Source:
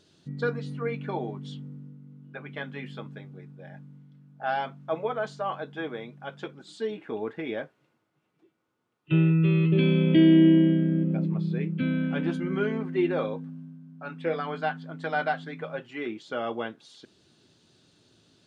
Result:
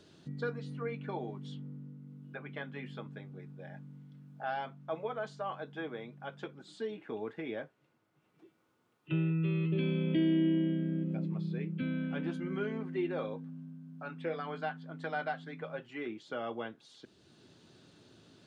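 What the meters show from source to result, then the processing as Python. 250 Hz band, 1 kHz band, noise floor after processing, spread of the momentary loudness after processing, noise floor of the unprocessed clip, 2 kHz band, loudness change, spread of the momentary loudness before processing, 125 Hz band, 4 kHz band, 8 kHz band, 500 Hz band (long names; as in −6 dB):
−10.0 dB, −8.0 dB, −74 dBFS, 17 LU, −73 dBFS, −8.0 dB, −10.0 dB, 21 LU, −9.5 dB, −9.0 dB, can't be measured, −8.5 dB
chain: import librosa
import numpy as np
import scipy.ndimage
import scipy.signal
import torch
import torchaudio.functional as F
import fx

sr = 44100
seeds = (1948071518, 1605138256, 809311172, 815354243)

y = fx.band_squash(x, sr, depth_pct=40)
y = y * librosa.db_to_amplitude(-8.0)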